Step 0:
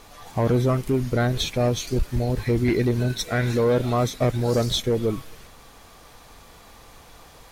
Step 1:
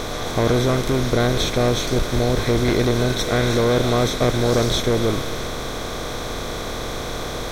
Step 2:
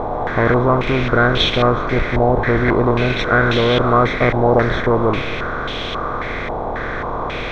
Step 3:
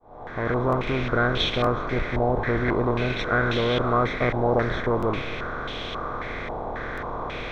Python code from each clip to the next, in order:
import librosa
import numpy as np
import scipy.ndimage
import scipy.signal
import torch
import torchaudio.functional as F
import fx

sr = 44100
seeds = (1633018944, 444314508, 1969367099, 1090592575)

y1 = fx.bin_compress(x, sr, power=0.4)
y1 = y1 * librosa.db_to_amplitude(-1.5)
y2 = fx.filter_held_lowpass(y1, sr, hz=3.7, low_hz=850.0, high_hz=3000.0)
y2 = y2 * librosa.db_to_amplitude(2.0)
y3 = fx.fade_in_head(y2, sr, length_s=0.66)
y3 = fx.buffer_glitch(y3, sr, at_s=(0.68, 1.62, 4.98, 6.93), block=1024, repeats=1)
y3 = y3 * librosa.db_to_amplitude(-8.0)